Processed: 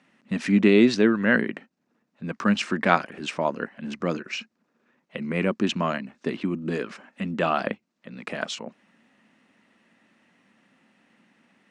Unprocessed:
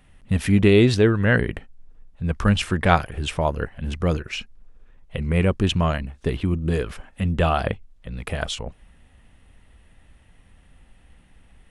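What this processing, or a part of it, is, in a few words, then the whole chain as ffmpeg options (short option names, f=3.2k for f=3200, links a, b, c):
television speaker: -af "highpass=f=210:w=0.5412,highpass=f=210:w=1.3066,equalizer=f=220:t=q:w=4:g=5,equalizer=f=450:t=q:w=4:g=-5,equalizer=f=770:t=q:w=4:g=-4,equalizer=f=3.3k:t=q:w=4:g=-6,lowpass=f=6.9k:w=0.5412,lowpass=f=6.9k:w=1.3066"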